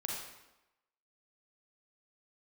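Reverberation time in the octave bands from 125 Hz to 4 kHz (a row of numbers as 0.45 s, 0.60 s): 0.80 s, 0.95 s, 0.95 s, 1.0 s, 0.90 s, 0.80 s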